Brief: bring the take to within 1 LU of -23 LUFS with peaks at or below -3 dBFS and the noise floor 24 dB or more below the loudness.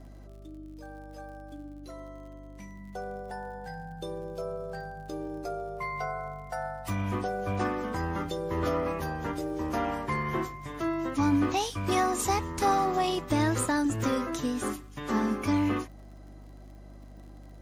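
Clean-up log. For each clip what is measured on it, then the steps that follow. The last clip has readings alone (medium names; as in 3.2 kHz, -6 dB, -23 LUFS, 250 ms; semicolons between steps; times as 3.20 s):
tick rate 55 per s; hum 50 Hz; highest harmonic 250 Hz; hum level -44 dBFS; loudness -30.5 LUFS; peak level -15.0 dBFS; loudness target -23.0 LUFS
-> de-click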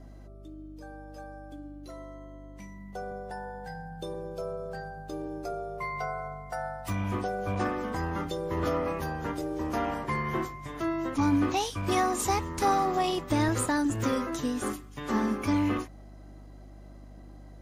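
tick rate 0.057 per s; hum 50 Hz; highest harmonic 250 Hz; hum level -45 dBFS
-> de-hum 50 Hz, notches 5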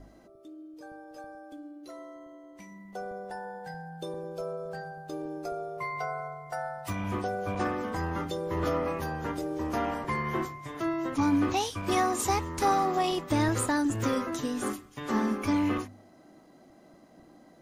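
hum not found; loudness -31.0 LUFS; peak level -15.0 dBFS; loudness target -23.0 LUFS
-> trim +8 dB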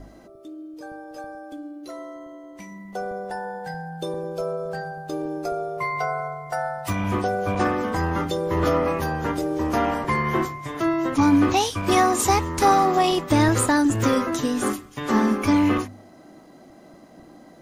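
loudness -23.0 LUFS; peak level -7.0 dBFS; noise floor -48 dBFS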